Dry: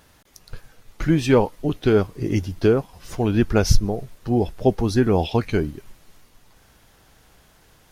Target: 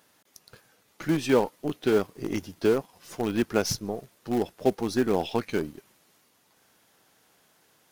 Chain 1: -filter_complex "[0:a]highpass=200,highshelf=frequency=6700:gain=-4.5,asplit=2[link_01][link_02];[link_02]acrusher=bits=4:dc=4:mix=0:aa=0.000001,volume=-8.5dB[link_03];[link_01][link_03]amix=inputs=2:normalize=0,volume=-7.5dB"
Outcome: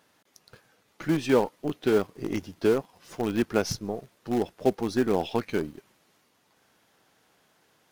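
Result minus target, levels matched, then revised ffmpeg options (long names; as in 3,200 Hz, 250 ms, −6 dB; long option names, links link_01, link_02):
8,000 Hz band −3.5 dB
-filter_complex "[0:a]highpass=200,highshelf=frequency=6700:gain=4,asplit=2[link_01][link_02];[link_02]acrusher=bits=4:dc=4:mix=0:aa=0.000001,volume=-8.5dB[link_03];[link_01][link_03]amix=inputs=2:normalize=0,volume=-7.5dB"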